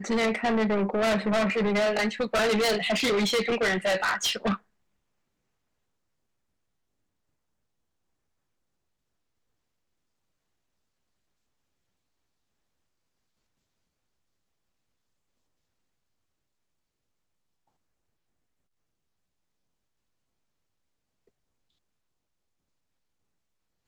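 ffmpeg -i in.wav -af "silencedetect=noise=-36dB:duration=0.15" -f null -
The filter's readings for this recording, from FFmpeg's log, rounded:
silence_start: 4.56
silence_end: 23.87 | silence_duration: 19.31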